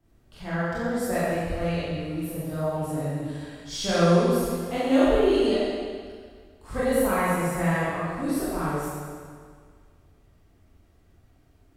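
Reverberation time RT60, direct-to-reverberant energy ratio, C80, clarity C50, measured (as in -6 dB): 1.9 s, -11.0 dB, -2.0 dB, -4.5 dB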